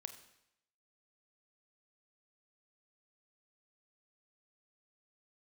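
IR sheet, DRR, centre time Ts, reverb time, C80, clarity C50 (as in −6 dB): 8.0 dB, 12 ms, 0.80 s, 12.5 dB, 10.0 dB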